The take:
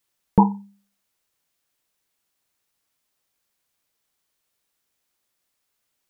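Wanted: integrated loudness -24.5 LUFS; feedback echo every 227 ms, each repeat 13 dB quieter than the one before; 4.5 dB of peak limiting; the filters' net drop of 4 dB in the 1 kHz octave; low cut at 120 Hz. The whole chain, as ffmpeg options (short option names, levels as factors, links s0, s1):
-af "highpass=120,equalizer=f=1000:t=o:g=-4.5,alimiter=limit=0.355:level=0:latency=1,aecho=1:1:227|454|681:0.224|0.0493|0.0108,volume=1.19"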